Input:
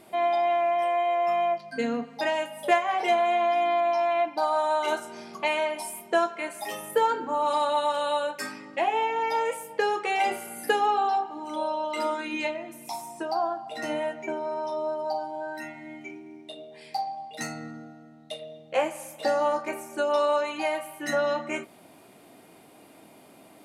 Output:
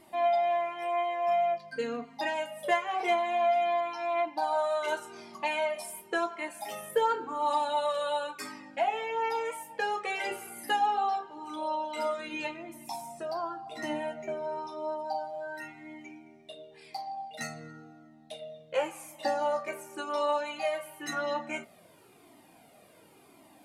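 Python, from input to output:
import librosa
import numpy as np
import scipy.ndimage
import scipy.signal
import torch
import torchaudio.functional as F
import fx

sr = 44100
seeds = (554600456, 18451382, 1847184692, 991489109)

y = fx.low_shelf(x, sr, hz=210.0, db=7.0, at=(12.19, 14.67))
y = fx.comb_cascade(y, sr, direction='falling', hz=0.94)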